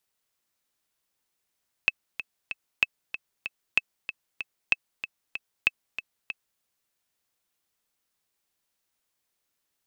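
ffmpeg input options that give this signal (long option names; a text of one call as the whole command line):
ffmpeg -f lavfi -i "aevalsrc='pow(10,(-6.5-12*gte(mod(t,3*60/190),60/190))/20)*sin(2*PI*2610*mod(t,60/190))*exp(-6.91*mod(t,60/190)/0.03)':duration=4.73:sample_rate=44100" out.wav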